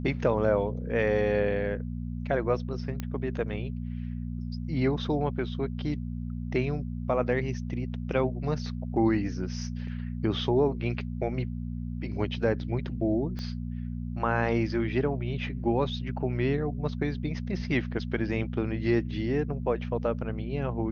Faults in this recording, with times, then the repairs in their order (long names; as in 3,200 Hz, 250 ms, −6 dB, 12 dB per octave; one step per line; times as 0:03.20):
mains hum 60 Hz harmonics 4 −34 dBFS
0:03.00: click −19 dBFS
0:13.39: click −25 dBFS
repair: click removal
hum removal 60 Hz, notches 4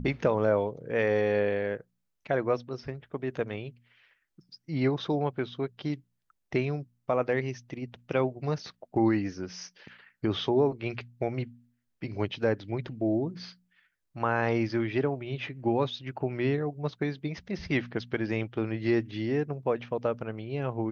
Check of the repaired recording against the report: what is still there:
0:13.39: click